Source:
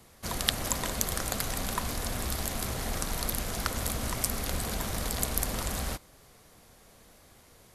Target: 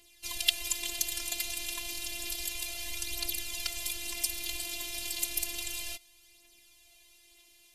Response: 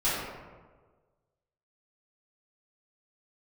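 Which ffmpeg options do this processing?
-af "highshelf=f=1.9k:t=q:w=3:g=10.5,aphaser=in_gain=1:out_gain=1:delay=4.9:decay=0.47:speed=0.31:type=triangular,afftfilt=real='hypot(re,im)*cos(PI*b)':imag='0':win_size=512:overlap=0.75,volume=-9.5dB"

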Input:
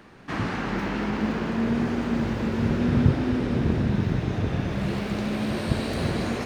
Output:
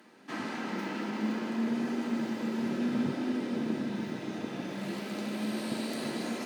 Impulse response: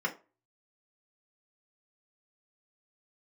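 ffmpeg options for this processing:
-filter_complex "[0:a]highpass=f=200:w=0.5412,highpass=f=200:w=1.3066,aemphasis=mode=production:type=cd,asplit=2[a][b];[1:a]atrim=start_sample=2205[c];[b][c]afir=irnorm=-1:irlink=0,volume=-11.5dB[d];[a][d]amix=inputs=2:normalize=0,volume=-6.5dB"

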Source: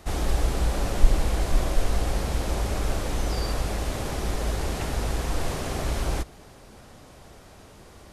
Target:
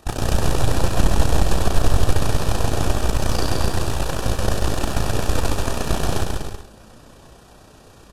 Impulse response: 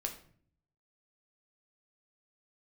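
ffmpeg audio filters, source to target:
-filter_complex "[0:a]flanger=delay=17.5:depth=2.1:speed=0.55,tremolo=f=31:d=0.667,aeval=exprs='0.211*(cos(1*acos(clip(val(0)/0.211,-1,1)))-cos(1*PI/2))+0.075*(cos(6*acos(clip(val(0)/0.211,-1,1)))-cos(6*PI/2))':c=same,asuperstop=centerf=2100:order=4:qfactor=6,asplit=2[a][b];[b]aecho=0:1:140|245|323.8|382.8|427.1:0.631|0.398|0.251|0.158|0.1[c];[a][c]amix=inputs=2:normalize=0,volume=6dB"

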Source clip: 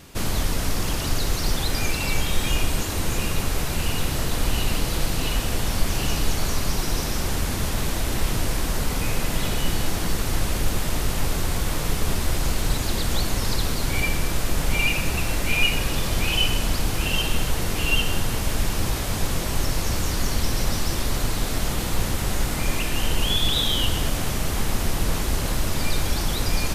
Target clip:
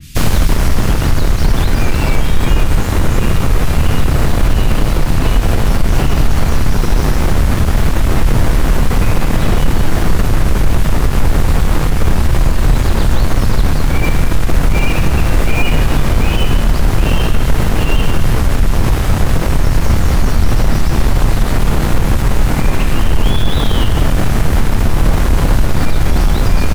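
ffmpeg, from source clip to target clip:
-filter_complex "[0:a]bandreject=f=92.32:t=h:w=4,bandreject=f=184.64:t=h:w=4,bandreject=f=276.96:t=h:w=4,acrossover=split=220|2000[a][b][c];[b]acrusher=bits=4:mix=0:aa=0.000001[d];[c]asoftclip=type=tanh:threshold=-30dB[e];[a][d][e]amix=inputs=3:normalize=0,lowshelf=f=430:g=4,asplit=2[f][g];[g]adelay=27,volume=-11.5dB[h];[f][h]amix=inputs=2:normalize=0,alimiter=level_in=11.5dB:limit=-1dB:release=50:level=0:latency=1,adynamicequalizer=threshold=0.02:dfrequency=2300:dqfactor=0.7:tfrequency=2300:tqfactor=0.7:attack=5:release=100:ratio=0.375:range=4:mode=cutabove:tftype=highshelf"

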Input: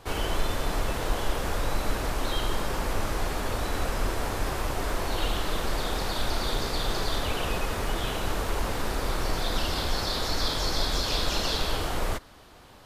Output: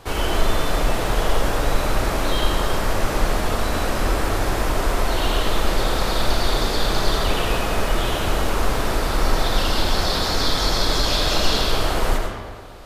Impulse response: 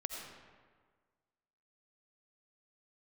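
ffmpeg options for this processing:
-filter_complex "[1:a]atrim=start_sample=2205[a];[0:a][a]afir=irnorm=-1:irlink=0,volume=7.5dB"

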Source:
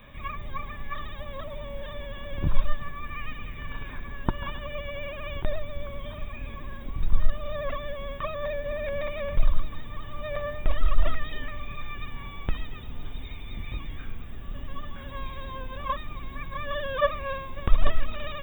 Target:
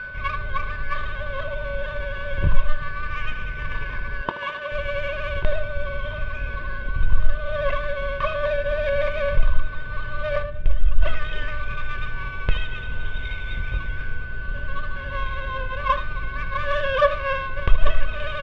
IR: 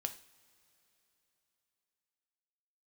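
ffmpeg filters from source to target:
-filter_complex "[0:a]asettb=1/sr,asplit=3[a][b][c];[a]atrim=end=4.214[d];[b]atrim=start=4.21:end=4.72,asetpts=PTS-STARTPTS,afade=t=in:d=0.004:c=qsin,afade=t=out:st=0.506:d=0.004:c=qsin,highpass=300[e];[c]atrim=start=4.716[f];[d][e]acrossfade=d=0.004:c1=hsin:c2=qsin[g];[g][f]acrossfade=d=0.004:c1=qsin:c2=hsin,asettb=1/sr,asplit=3[h][i][j];[h]atrim=end=12.514[k];[i]atrim=start=12.51:end=13.59,asetpts=PTS-STARTPTS,afade=t=in:d=0.004:c=qsin,afade=t=out:st=1.076:d=0.004:c=qsin,aemphasis=mode=production:type=75kf[l];[j]atrim=start=13.586[m];[k][l]acrossfade=d=0.004:c1=hsin:c2=qsin[n];[n][m]acrossfade=d=0.004:c1=qsin:c2=hsin,aeval=exprs='val(0)+0.0158*sin(2*PI*1500*n/s)':c=same,asplit=3[o][p][q];[o]afade=t=out:st=10.42:d=0.02[r];[p]equalizer=f=980:w=0.53:g=-14,afade=t=in:st=10.42:d=0.02,afade=t=out:st=11.01:d=0.02[s];[q]afade=t=in:st=11.01:d=0.02[t];[r][s][t]amix=inputs=3:normalize=0,asplit=2[u][v];[v]aecho=0:1:23|77:0.188|0.211[w];[u][w]amix=inputs=2:normalize=0,adynamicsmooth=sensitivity=7:basefreq=1.1k,aecho=1:1:1.9:0.57,asplit=2[x][y];[y]alimiter=limit=-12dB:level=0:latency=1:release=403,volume=2.5dB[z];[x][z]amix=inputs=2:normalize=0,lowpass=f=3k:t=q:w=2.3,volume=-3.5dB"

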